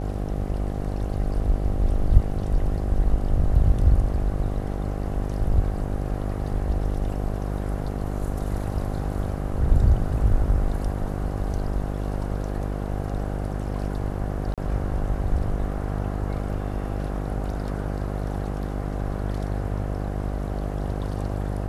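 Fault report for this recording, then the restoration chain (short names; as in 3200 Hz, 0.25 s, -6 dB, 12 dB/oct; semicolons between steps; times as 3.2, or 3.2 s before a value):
buzz 50 Hz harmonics 16 -28 dBFS
14.54–14.58 gap 37 ms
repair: de-hum 50 Hz, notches 16; interpolate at 14.54, 37 ms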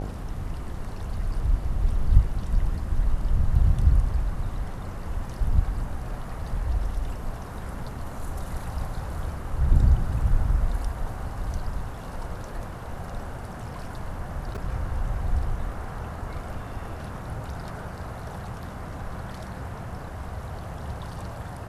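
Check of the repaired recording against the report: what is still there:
none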